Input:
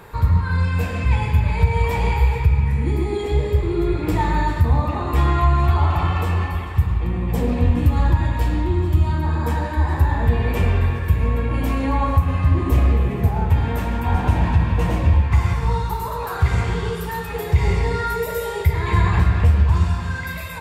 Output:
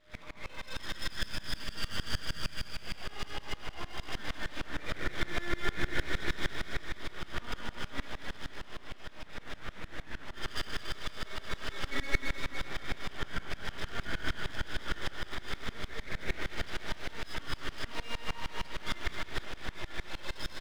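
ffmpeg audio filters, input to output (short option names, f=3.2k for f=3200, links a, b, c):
-filter_complex "[0:a]equalizer=f=2.4k:w=1:g=12,acompressor=threshold=-15dB:ratio=6,asplit=3[a][b][c];[a]bandpass=f=730:t=q:w=8,volume=0dB[d];[b]bandpass=f=1.09k:t=q:w=8,volume=-6dB[e];[c]bandpass=f=2.44k:t=q:w=8,volume=-9dB[f];[d][e][f]amix=inputs=3:normalize=0,aeval=exprs='abs(val(0))':c=same,aeval=exprs='val(0)+0.00126*sin(2*PI*610*n/s)':c=same,asettb=1/sr,asplit=3[g][h][i];[g]atrim=end=8.374[j];[h]atrim=start=8.37:end=10.37,asetpts=PTS-STARTPTS,afade=t=in:d=0.004:c=qsin,afade=t=out:st=1.996:d=0.004:c=qsin,flanger=delay=3.1:depth=4.2:regen=-70:speed=1.3:shape=triangular[k];[i]atrim=start=10.366[l];[j][k]acrossfade=d=0.004:c1=hsin:c2=qsin[m];[m][l]acrossfade=d=0.004:c1=qsin:c2=hsin,aecho=1:1:220|506|877.8|1361|1989:0.631|0.398|0.251|0.158|0.1,aeval=exprs='val(0)*pow(10,-23*if(lt(mod(-6.5*n/s,1),2*abs(-6.5)/1000),1-mod(-6.5*n/s,1)/(2*abs(-6.5)/1000),(mod(-6.5*n/s,1)-2*abs(-6.5)/1000)/(1-2*abs(-6.5)/1000))/20)':c=same,volume=6dB"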